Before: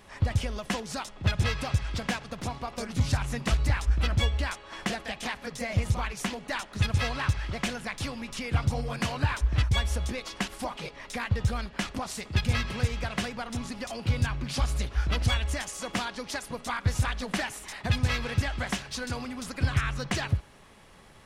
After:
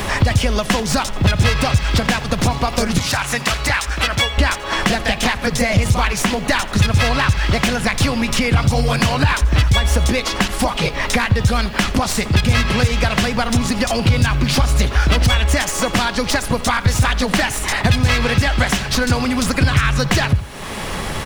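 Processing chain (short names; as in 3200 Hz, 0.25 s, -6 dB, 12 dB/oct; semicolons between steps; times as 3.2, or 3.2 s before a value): tracing distortion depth 0.029 ms; 2.98–4.38 HPF 1200 Hz 6 dB/oct; in parallel at +2 dB: compressor, threshold -36 dBFS, peak gain reduction 16 dB; on the sum: bit-crush 11-bit; on a send: echo 85 ms -20.5 dB; on the sum: maximiser +15 dB; three-band squash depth 70%; gain -3.5 dB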